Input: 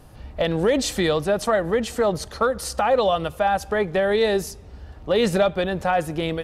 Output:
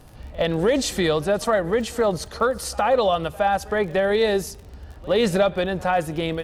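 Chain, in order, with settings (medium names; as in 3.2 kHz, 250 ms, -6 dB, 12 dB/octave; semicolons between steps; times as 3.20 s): pre-echo 65 ms -22 dB; crackle 34 per s -35 dBFS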